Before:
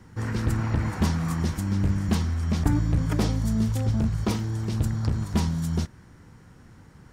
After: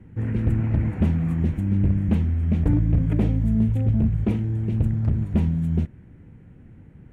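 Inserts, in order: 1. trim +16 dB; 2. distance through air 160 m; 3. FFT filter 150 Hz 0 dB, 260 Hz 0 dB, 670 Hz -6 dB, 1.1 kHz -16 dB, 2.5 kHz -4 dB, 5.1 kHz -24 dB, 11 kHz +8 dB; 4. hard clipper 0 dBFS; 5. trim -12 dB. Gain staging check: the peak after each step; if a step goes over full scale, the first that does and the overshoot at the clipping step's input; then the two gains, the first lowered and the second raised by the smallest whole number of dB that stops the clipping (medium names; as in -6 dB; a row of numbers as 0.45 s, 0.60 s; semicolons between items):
+7.5 dBFS, +7.0 dBFS, +6.5 dBFS, 0.0 dBFS, -12.0 dBFS; step 1, 6.5 dB; step 1 +9 dB, step 5 -5 dB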